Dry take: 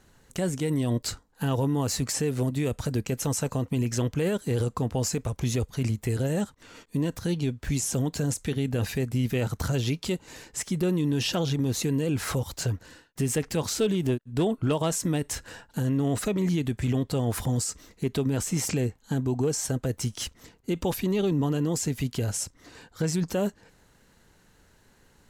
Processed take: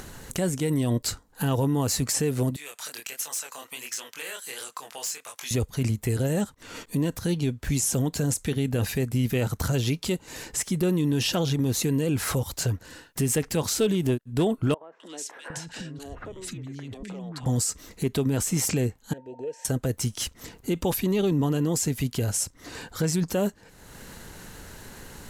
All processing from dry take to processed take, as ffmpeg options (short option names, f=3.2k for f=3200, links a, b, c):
-filter_complex "[0:a]asettb=1/sr,asplit=3[a][b][c];[a]atrim=end=2.564[d];[b]atrim=start=2.56:end=5.51,asetpts=PTS-STARTPTS,afade=t=in:d=0.004:c=qsin,afade=t=out:st=2.946:d=0.004:c=qsin,highpass=1.4k,flanger=delay=19.5:depth=7.2:speed=1.4,aeval=exprs='0.0355*(abs(mod(val(0)/0.0355+3,4)-2)-1)':c=same[e];[c]atrim=start=5.506[f];[d][e]acrossfade=d=0.004:c1=hsin:c2=qsin[g];[g][f]acrossfade=d=0.004:c1=qsin:c2=hsin,asettb=1/sr,asplit=3[h][i][j];[h]atrim=end=14.744[k];[i]atrim=start=14.74:end=17.46,asetpts=PTS-STARTPTS,afade=t=in:d=0.004:c=qsin,afade=t=out:st=2.716:d=0.004:c=qsin,lowpass=6.3k,acompressor=threshold=-39dB:ratio=20:attack=3.2:release=140:knee=1:detection=peak,acrossover=split=320|1800[l][m][n];[n]adelay=260[o];[l]adelay=760[p];[p][m][o]amix=inputs=3:normalize=0,atrim=end_sample=119952[q];[j]atrim=start=17.456[r];[k][q]acrossfade=d=0.004:c1=hsin:c2=qsin[s];[s][r]acrossfade=d=0.004:c1=qsin:c2=hsin,asettb=1/sr,asplit=3[t][u][v];[t]atrim=end=19.134[w];[u]atrim=start=19.13:end=19.65,asetpts=PTS-STARTPTS,afade=t=in:d=0.004:c=qsin,afade=t=out:st=0.516:d=0.004:c=qsin,aeval=exprs='val(0)+0.0282*sin(2*PI*910*n/s)':c=same,asplit=3[x][y][z];[x]bandpass=f=530:t=q:w=8,volume=0dB[aa];[y]bandpass=f=1.84k:t=q:w=8,volume=-6dB[ab];[z]bandpass=f=2.48k:t=q:w=8,volume=-9dB[ac];[aa][ab][ac]amix=inputs=3:normalize=0[ad];[v]atrim=start=19.646[ae];[w][ad]acrossfade=d=0.004:c1=hsin:c2=qsin[af];[af][ae]acrossfade=d=0.004:c1=qsin:c2=hsin,acompressor=mode=upward:threshold=-31dB:ratio=2.5,equalizer=f=12k:t=o:w=0.89:g=5.5,volume=1.5dB"